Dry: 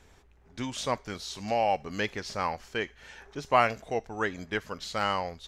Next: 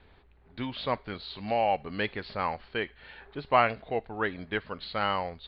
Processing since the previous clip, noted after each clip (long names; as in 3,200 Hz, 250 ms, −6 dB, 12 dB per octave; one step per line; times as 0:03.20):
Butterworth low-pass 4,500 Hz 96 dB per octave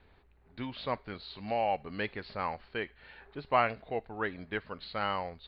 parametric band 3,300 Hz −4 dB 0.22 octaves
level −4 dB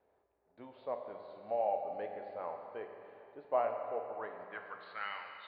band-pass filter sweep 590 Hz → 2,700 Hz, 0:04.03–0:05.38
convolution reverb RT60 2.8 s, pre-delay 10 ms, DRR 3.5 dB
level −1.5 dB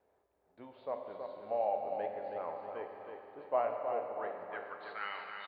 repeating echo 321 ms, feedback 48%, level −6 dB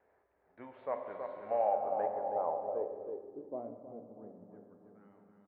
low-pass filter sweep 1,900 Hz → 220 Hz, 0:01.48–0:03.90
level +1 dB